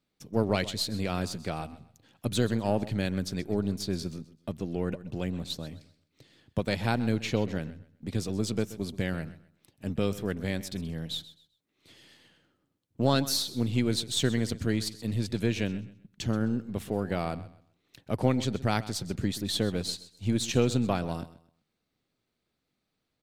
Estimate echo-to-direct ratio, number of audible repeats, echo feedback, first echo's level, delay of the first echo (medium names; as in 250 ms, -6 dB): -16.0 dB, 2, 26%, -16.5 dB, 129 ms